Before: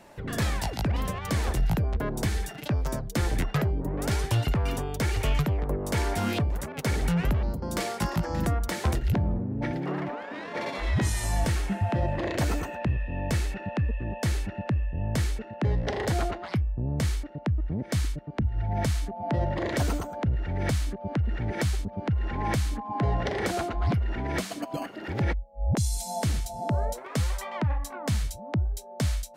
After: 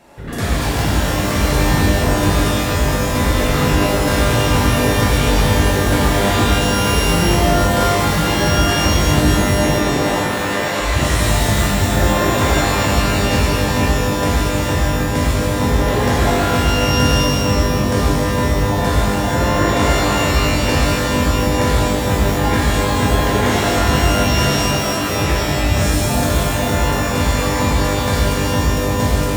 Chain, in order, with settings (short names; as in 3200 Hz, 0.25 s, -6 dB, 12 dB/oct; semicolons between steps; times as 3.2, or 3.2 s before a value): shimmer reverb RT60 3.1 s, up +12 st, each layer -2 dB, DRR -7 dB; gain +2 dB